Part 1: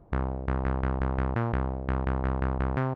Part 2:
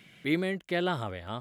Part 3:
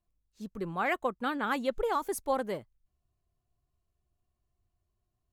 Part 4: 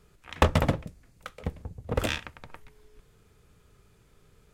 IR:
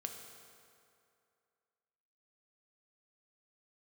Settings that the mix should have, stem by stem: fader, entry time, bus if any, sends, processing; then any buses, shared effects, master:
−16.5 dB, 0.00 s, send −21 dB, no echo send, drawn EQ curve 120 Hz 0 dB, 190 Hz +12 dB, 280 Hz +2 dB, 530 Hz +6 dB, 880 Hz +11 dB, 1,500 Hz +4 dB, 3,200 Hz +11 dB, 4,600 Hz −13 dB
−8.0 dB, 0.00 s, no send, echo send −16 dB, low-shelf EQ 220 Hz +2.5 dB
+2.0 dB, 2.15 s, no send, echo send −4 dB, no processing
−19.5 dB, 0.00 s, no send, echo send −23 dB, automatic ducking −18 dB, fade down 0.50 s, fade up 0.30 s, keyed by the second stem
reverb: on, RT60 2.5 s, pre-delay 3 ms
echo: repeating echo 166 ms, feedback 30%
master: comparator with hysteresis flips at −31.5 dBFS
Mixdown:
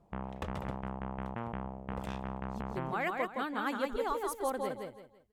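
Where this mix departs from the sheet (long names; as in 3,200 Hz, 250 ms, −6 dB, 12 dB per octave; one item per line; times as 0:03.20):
stem 2: muted
stem 3 +2.0 dB → −4.5 dB
master: missing comparator with hysteresis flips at −31.5 dBFS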